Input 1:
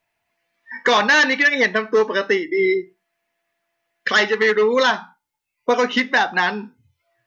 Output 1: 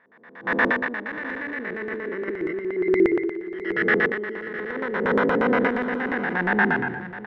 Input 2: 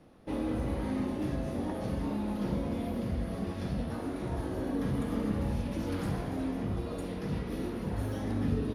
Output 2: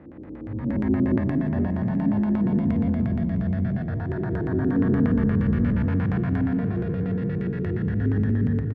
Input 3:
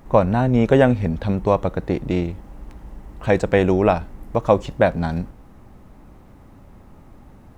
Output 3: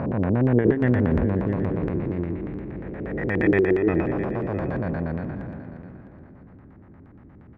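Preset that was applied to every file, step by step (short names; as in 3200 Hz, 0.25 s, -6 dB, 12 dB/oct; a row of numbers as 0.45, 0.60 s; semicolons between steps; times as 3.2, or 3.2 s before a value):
time blur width 0.783 s; spectral noise reduction 14 dB; HPF 83 Hz 12 dB/oct; negative-ratio compressor -31 dBFS, ratio -0.5; low shelf 180 Hz +9 dB; LFO low-pass square 8.5 Hz 360–1800 Hz; feedback echo 0.657 s, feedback 25%, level -14 dB; match loudness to -24 LUFS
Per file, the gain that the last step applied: +4.0, +9.5, +8.5 dB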